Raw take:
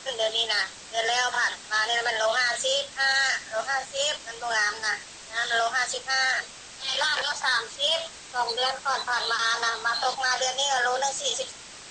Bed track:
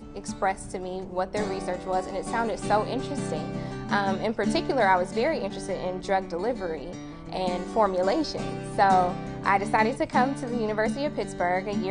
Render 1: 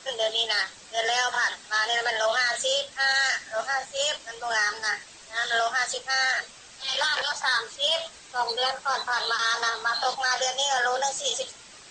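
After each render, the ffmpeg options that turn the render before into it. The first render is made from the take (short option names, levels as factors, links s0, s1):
-af "afftdn=nr=6:nf=-44"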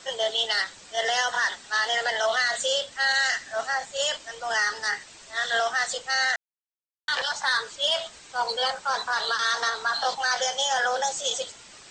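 -filter_complex "[0:a]asplit=3[s0][s1][s2];[s0]atrim=end=6.36,asetpts=PTS-STARTPTS,afade=t=out:st=6.356:d=0.004:c=hsin[s3];[s1]atrim=start=6.36:end=7.08,asetpts=PTS-STARTPTS,volume=0[s4];[s2]atrim=start=7.08,asetpts=PTS-STARTPTS,afade=t=in:d=0.004:c=hsin[s5];[s3][s4][s5]concat=n=3:v=0:a=1"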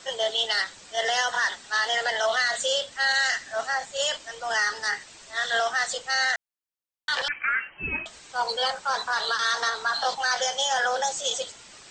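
-filter_complex "[0:a]asettb=1/sr,asplit=3[s0][s1][s2];[s0]atrim=end=7.284[s3];[s1]atrim=start=7.28:end=8.06,asetpts=PTS-STARTPTS,afade=t=in:d=0.004:c=qsin,afade=t=out:st=0.776:d=0.004:c=qsin,lowpass=f=2700:t=q:w=0.5098,lowpass=f=2700:t=q:w=0.6013,lowpass=f=2700:t=q:w=0.9,lowpass=f=2700:t=q:w=2.563,afreqshift=-3200[s4];[s2]atrim=start=8.056[s5];[s3][s4]acrossfade=d=0.004:c1=hsin:c2=qsin[s6];[s6][s5]acrossfade=d=0.004:c1=qsin:c2=hsin"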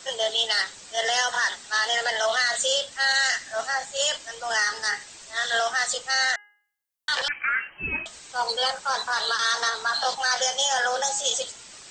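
-af "highshelf=f=6300:g=8.5,bandreject=f=413.4:t=h:w=4,bandreject=f=826.8:t=h:w=4,bandreject=f=1240.2:t=h:w=4,bandreject=f=1653.6:t=h:w=4,bandreject=f=2067:t=h:w=4,bandreject=f=2480.4:t=h:w=4,bandreject=f=2893.8:t=h:w=4"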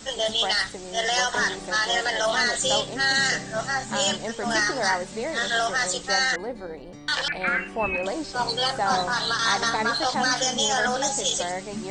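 -filter_complex "[1:a]volume=0.562[s0];[0:a][s0]amix=inputs=2:normalize=0"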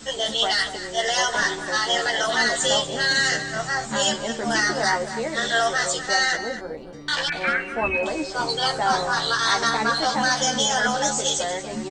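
-filter_complex "[0:a]asplit=2[s0][s1];[s1]adelay=13,volume=0.631[s2];[s0][s2]amix=inputs=2:normalize=0,asplit=2[s3][s4];[s4]adelay=239.1,volume=0.282,highshelf=f=4000:g=-5.38[s5];[s3][s5]amix=inputs=2:normalize=0"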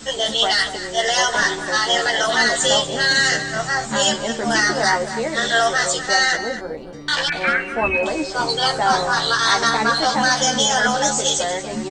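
-af "volume=1.58"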